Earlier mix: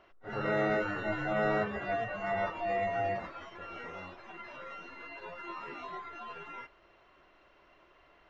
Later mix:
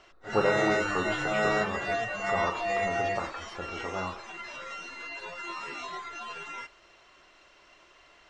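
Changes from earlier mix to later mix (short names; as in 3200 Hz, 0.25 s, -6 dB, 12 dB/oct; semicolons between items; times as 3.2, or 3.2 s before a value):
speech +11.5 dB; master: remove tape spacing loss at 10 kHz 32 dB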